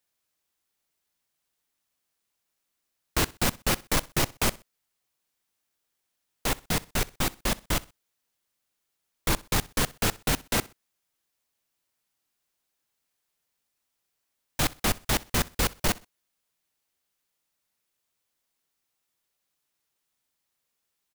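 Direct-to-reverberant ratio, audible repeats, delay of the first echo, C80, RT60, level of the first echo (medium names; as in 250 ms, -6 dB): no reverb, 2, 63 ms, no reverb, no reverb, -22.0 dB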